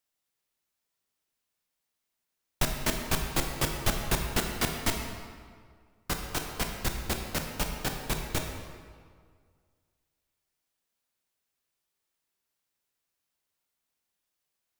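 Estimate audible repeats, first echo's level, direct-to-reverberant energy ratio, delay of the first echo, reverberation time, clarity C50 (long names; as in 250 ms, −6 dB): no echo audible, no echo audible, 3.0 dB, no echo audible, 1.9 s, 4.5 dB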